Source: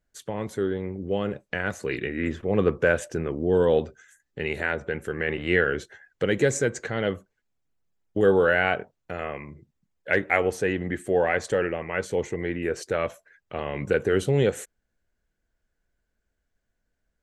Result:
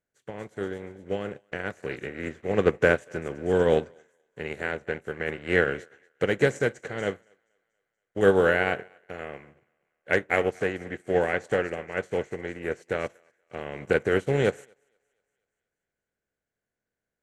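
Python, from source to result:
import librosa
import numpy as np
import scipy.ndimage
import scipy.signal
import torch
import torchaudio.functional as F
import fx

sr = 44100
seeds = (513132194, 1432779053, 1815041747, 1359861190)

y = fx.bin_compress(x, sr, power=0.6)
y = fx.echo_thinned(y, sr, ms=238, feedback_pct=62, hz=370.0, wet_db=-12)
y = fx.upward_expand(y, sr, threshold_db=-37.0, expansion=2.5)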